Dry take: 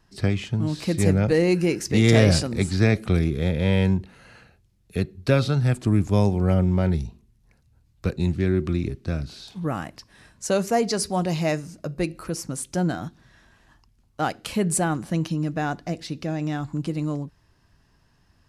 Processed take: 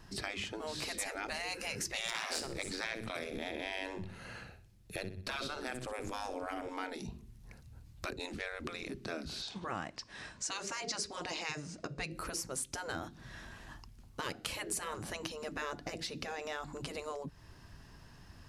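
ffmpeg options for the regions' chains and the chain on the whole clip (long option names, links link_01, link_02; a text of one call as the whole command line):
ffmpeg -i in.wav -filter_complex "[0:a]asettb=1/sr,asplit=3[link_01][link_02][link_03];[link_01]atrim=end=2.084[link_04];[link_02]atrim=start=2.08:end=6.69,asetpts=PTS-STARTPTS,afade=type=in:duration=0.004:curve=qsin,afade=type=out:start_time=4.606:duration=0.004:curve=qsin,aeval=exprs='(tanh(5.01*val(0)+0.75)-tanh(0.75))/5.01':channel_layout=same,aecho=1:1:62|124|186|248:0.237|0.0854|0.0307|0.0111,atrim=end_sample=203301[link_05];[link_03]atrim=start=6.686[link_06];[link_04][link_05]acrossfade=duration=0.004:curve1=hsin:curve2=qsin[link_07];[link_07][link_06]acrossfade=duration=0.004:curve1=qsin:curve2=hsin,asettb=1/sr,asplit=3[link_08][link_09][link_10];[link_08]atrim=end=9.424[link_11];[link_09]atrim=start=9.42:end=12.12,asetpts=PTS-STARTPTS,afade=type=in:duration=0.004:curve=qsin,afade=type=out:start_time=2.696:duration=0.004:curve=qsin,lowpass=frequency=7800:width=0.5412,lowpass=frequency=7800:width=1.3066,lowshelf=frequency=270:gain=-9[link_12];[link_10]atrim=start=12.116[link_13];[link_11][link_12]acrossfade=duration=0.004:curve1=hsin:curve2=qsin[link_14];[link_14][link_13]acrossfade=duration=0.004:curve1=qsin:curve2=hsin,afftfilt=real='re*lt(hypot(re,im),0.141)':imag='im*lt(hypot(re,im),0.141)':win_size=1024:overlap=0.75,acompressor=threshold=-48dB:ratio=2.5,volume=6.5dB" out.wav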